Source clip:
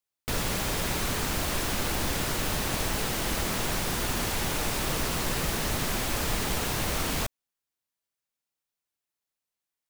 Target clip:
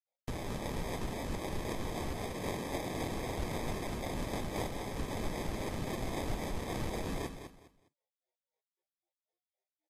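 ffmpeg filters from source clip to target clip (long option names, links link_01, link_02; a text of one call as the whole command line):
ffmpeg -i in.wav -filter_complex "[0:a]asettb=1/sr,asplit=3[link_01][link_02][link_03];[link_01]atrim=end=2.294[link_04];[link_02]atrim=start=2.29:end=3.11,asetpts=PTS-STARTPTS,afade=type=in:duration=0.004:curve=qsin,afade=type=out:start_time=0.816:duration=0.004:curve=qsin,highpass=150[link_05];[link_03]atrim=start=3.106[link_06];[link_04][link_05]acrossfade=duration=0.004:curve1=hsin:curve2=qsin[link_07];[link_07][link_06]acrossfade=duration=0.004:curve1=qsin:curve2=hsin,asplit=3[link_08][link_09][link_10];[link_08]afade=type=out:start_time=4.32:duration=0.02[link_11];[link_09]highshelf=frequency=4700:gain=8.5,afade=type=in:start_time=4.32:duration=0.02,afade=type=out:start_time=4.81:duration=0.02[link_12];[link_10]afade=type=in:start_time=4.81:duration=0.02[link_13];[link_11][link_12][link_13]amix=inputs=3:normalize=0,alimiter=limit=-19.5dB:level=0:latency=1:release=333,acrossover=split=1000[link_14][link_15];[link_14]aeval=exprs='val(0)*(1-1/2+1/2*cos(2*PI*3.8*n/s))':channel_layout=same[link_16];[link_15]aeval=exprs='val(0)*(1-1/2-1/2*cos(2*PI*3.8*n/s))':channel_layout=same[link_17];[link_16][link_17]amix=inputs=2:normalize=0,acrusher=samples=31:mix=1:aa=0.000001,aecho=1:1:205|410|615:0.355|0.0887|0.0222,volume=-2dB" -ar 48000 -c:a libvorbis -b:a 32k out.ogg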